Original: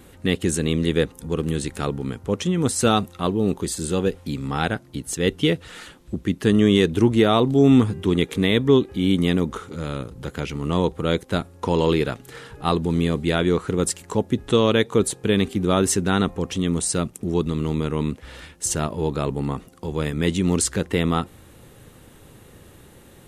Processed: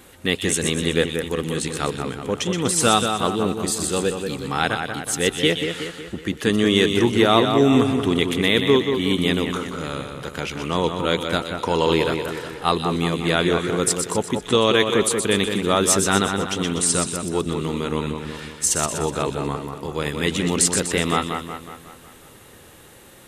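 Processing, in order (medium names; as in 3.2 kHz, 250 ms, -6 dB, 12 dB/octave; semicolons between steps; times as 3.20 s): bass shelf 400 Hz -10.5 dB; two-band feedback delay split 2.7 kHz, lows 184 ms, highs 123 ms, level -6 dB; trim +4.5 dB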